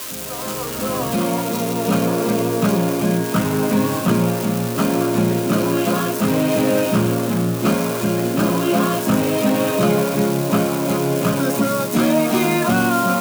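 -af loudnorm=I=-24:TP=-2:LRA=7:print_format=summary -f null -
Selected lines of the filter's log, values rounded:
Input Integrated:    -18.6 LUFS
Input True Peak:      -5.2 dBTP
Input LRA:             1.2 LU
Input Threshold:     -28.6 LUFS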